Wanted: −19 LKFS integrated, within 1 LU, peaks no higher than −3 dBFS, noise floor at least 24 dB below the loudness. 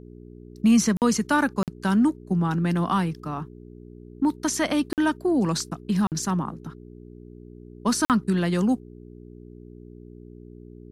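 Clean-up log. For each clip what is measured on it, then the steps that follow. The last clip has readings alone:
number of dropouts 5; longest dropout 48 ms; mains hum 60 Hz; hum harmonics up to 420 Hz; level of the hum −42 dBFS; integrated loudness −24.0 LKFS; sample peak −9.5 dBFS; target loudness −19.0 LKFS
→ repair the gap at 0:00.97/0:01.63/0:04.93/0:06.07/0:08.05, 48 ms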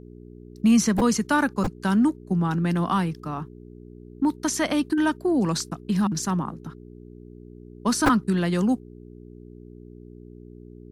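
number of dropouts 0; mains hum 60 Hz; hum harmonics up to 420 Hz; level of the hum −42 dBFS
→ hum removal 60 Hz, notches 7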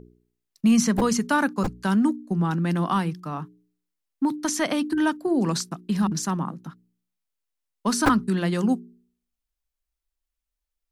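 mains hum none found; integrated loudness −24.0 LKFS; sample peak −6.0 dBFS; target loudness −19.0 LKFS
→ level +5 dB
brickwall limiter −3 dBFS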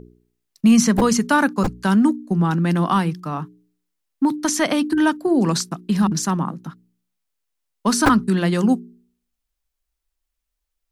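integrated loudness −19.0 LKFS; sample peak −3.0 dBFS; background noise floor −79 dBFS

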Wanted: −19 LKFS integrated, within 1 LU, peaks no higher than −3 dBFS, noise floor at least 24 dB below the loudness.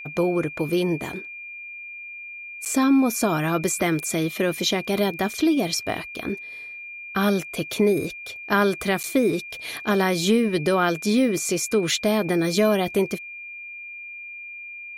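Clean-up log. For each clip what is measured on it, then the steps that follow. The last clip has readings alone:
number of dropouts 2; longest dropout 8.4 ms; interfering tone 2,400 Hz; level of the tone −35 dBFS; integrated loudness −23.0 LKFS; sample peak −8.5 dBFS; target loudness −19.0 LKFS
→ repair the gap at 0:02.65/0:09.03, 8.4 ms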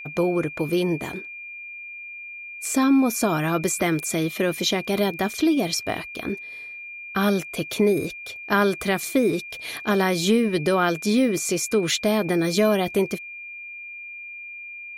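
number of dropouts 0; interfering tone 2,400 Hz; level of the tone −35 dBFS
→ notch filter 2,400 Hz, Q 30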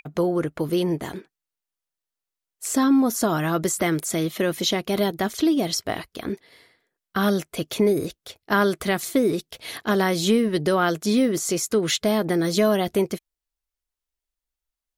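interfering tone none found; integrated loudness −23.0 LKFS; sample peak −8.5 dBFS; target loudness −19.0 LKFS
→ level +4 dB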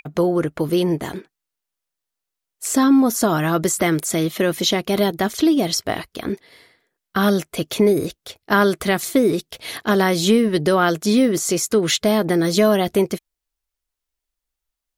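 integrated loudness −19.0 LKFS; sample peak −4.5 dBFS; background noise floor −83 dBFS

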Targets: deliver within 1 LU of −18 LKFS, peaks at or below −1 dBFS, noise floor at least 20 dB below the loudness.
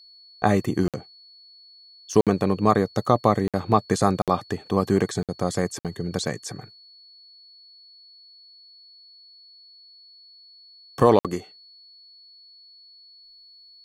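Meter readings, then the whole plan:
number of dropouts 7; longest dropout 57 ms; interfering tone 4,400 Hz; level of the tone −48 dBFS; integrated loudness −23.5 LKFS; sample peak −3.0 dBFS; target loudness −18.0 LKFS
→ repair the gap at 0:00.88/0:02.21/0:03.48/0:04.22/0:05.23/0:05.79/0:11.19, 57 ms
notch filter 4,400 Hz, Q 30
level +5.5 dB
brickwall limiter −1 dBFS

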